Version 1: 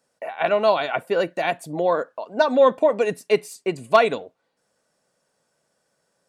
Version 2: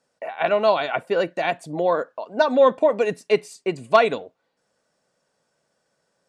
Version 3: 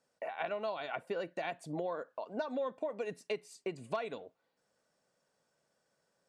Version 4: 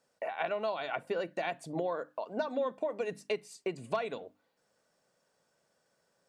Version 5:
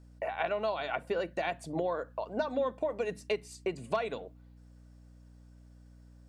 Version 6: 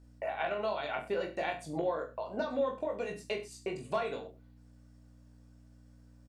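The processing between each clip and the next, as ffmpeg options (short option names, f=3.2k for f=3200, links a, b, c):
-af "lowpass=7.8k"
-af "acompressor=threshold=-28dB:ratio=5,volume=-7dB"
-af "bandreject=f=50:t=h:w=6,bandreject=f=100:t=h:w=6,bandreject=f=150:t=h:w=6,bandreject=f=200:t=h:w=6,bandreject=f=250:t=h:w=6,bandreject=f=300:t=h:w=6,volume=3.5dB"
-af "aeval=exprs='val(0)+0.00178*(sin(2*PI*60*n/s)+sin(2*PI*2*60*n/s)/2+sin(2*PI*3*60*n/s)/3+sin(2*PI*4*60*n/s)/4+sin(2*PI*5*60*n/s)/5)':c=same,volume=1.5dB"
-af "aecho=1:1:20|42|66.2|92.82|122.1:0.631|0.398|0.251|0.158|0.1,volume=-3.5dB"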